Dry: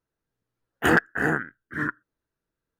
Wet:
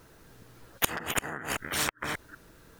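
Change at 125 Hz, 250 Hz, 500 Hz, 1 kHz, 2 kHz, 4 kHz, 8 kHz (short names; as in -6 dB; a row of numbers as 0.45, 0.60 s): -9.0, -12.5, -9.5, -6.0, -9.0, +6.5, +11.5 dB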